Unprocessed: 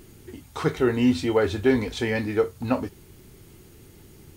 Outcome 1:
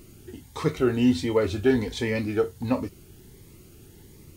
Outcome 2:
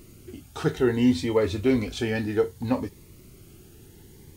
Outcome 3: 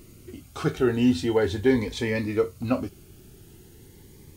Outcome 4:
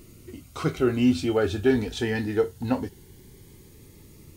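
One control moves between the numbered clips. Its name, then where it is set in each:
cascading phaser, rate: 1.4, 0.64, 0.42, 0.22 Hz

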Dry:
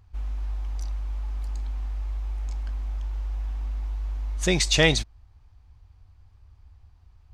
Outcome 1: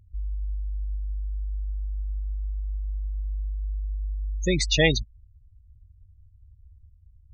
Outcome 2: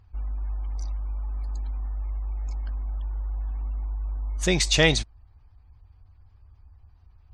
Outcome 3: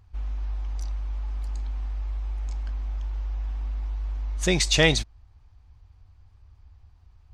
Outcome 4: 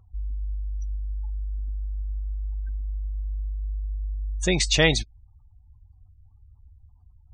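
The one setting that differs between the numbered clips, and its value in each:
spectral gate, under each frame's peak: -15, -45, -60, -30 dB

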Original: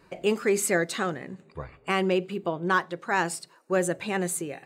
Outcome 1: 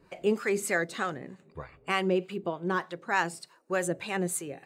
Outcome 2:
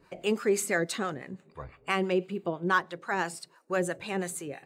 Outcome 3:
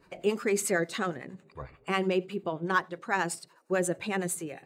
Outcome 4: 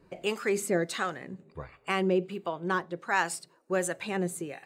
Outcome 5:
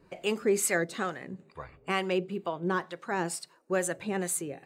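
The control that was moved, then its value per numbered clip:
harmonic tremolo, rate: 3.3, 6, 11, 1.4, 2.2 Hz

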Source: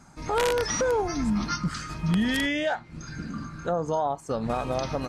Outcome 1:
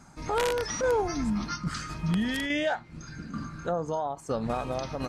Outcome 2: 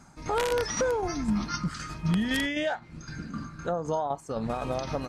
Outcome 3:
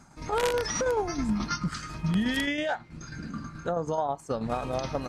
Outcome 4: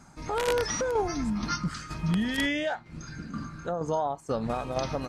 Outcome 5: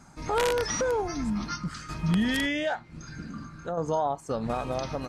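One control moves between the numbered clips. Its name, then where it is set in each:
tremolo, rate: 1.2, 3.9, 9.3, 2.1, 0.53 Hz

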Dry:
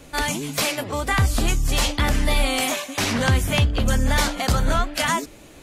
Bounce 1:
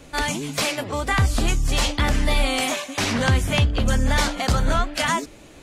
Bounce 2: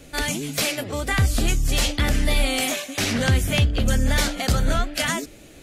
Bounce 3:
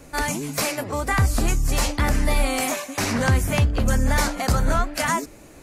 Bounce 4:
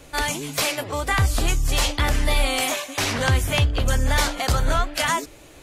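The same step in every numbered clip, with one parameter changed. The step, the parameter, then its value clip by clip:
bell, frequency: 14000, 1000, 3300, 210 Hz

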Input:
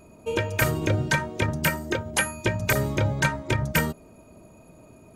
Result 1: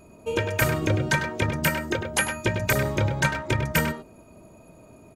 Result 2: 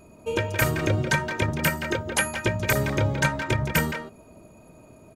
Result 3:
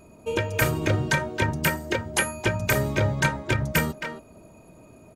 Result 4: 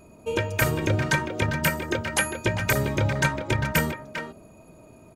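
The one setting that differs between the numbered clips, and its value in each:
speakerphone echo, time: 0.1, 0.17, 0.27, 0.4 s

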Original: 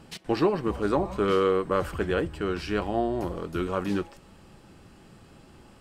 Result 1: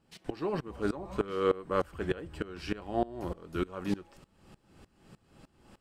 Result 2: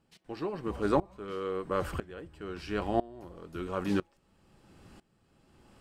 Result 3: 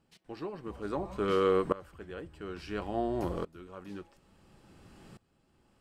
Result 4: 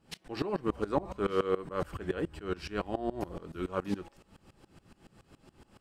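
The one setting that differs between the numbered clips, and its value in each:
dB-ramp tremolo, rate: 3.3, 1, 0.58, 7.1 Hz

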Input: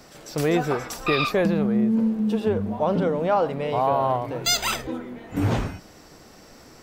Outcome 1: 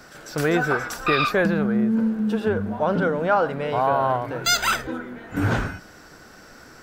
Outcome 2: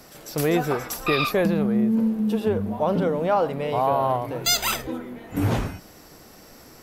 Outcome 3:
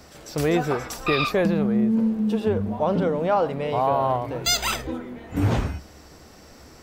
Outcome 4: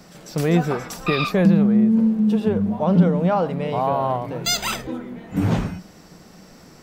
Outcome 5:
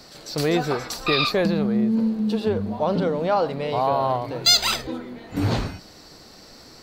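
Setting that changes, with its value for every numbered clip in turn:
bell, frequency: 1500, 12000, 70, 180, 4300 Hz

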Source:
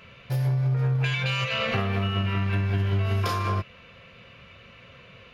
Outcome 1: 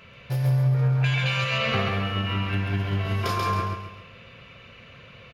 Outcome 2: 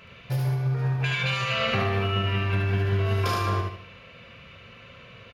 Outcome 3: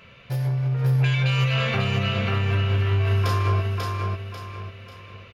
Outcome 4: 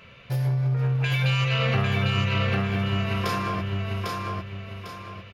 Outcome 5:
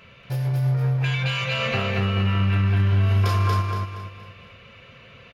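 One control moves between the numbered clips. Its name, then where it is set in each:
feedback echo, time: 136, 74, 542, 800, 235 ms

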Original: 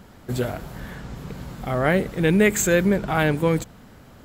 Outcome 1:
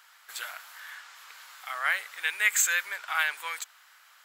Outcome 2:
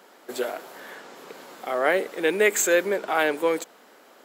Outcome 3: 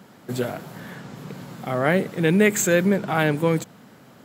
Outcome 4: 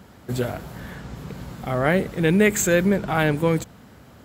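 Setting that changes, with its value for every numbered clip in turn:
HPF, cutoff: 1200, 350, 130, 51 Hz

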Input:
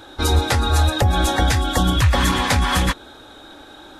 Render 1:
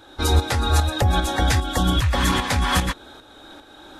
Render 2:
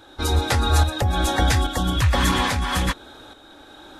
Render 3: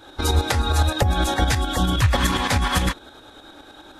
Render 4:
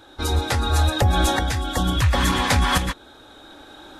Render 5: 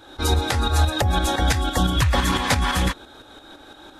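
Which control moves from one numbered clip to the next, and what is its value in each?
tremolo, rate: 2.5, 1.2, 9.7, 0.72, 5.9 Hz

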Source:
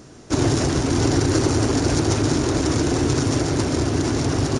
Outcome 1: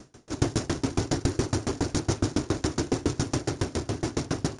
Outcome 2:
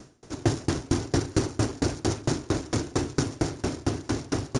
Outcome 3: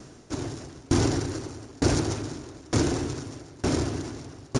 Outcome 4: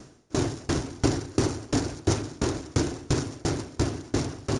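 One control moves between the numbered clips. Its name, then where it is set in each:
dB-ramp tremolo, rate: 7.2, 4.4, 1.1, 2.9 Hz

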